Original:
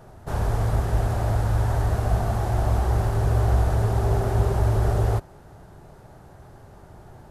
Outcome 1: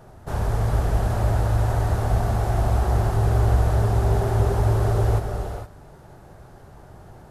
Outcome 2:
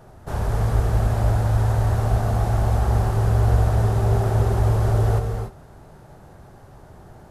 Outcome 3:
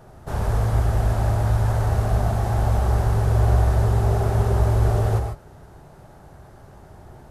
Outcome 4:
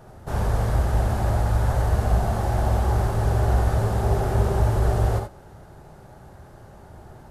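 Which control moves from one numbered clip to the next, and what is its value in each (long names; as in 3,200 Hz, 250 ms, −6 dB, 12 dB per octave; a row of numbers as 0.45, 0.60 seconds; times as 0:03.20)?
reverb whose tail is shaped and stops, gate: 490, 320, 170, 100 milliseconds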